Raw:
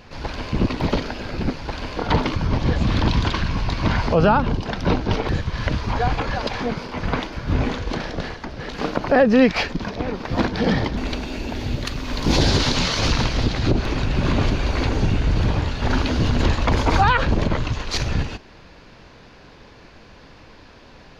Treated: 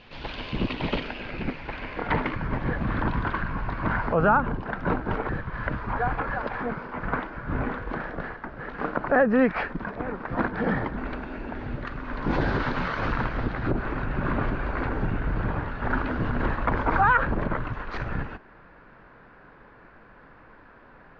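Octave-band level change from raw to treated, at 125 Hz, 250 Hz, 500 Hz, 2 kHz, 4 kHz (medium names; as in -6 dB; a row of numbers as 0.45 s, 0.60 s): -9.0 dB, -6.5 dB, -5.5 dB, -2.0 dB, -16.5 dB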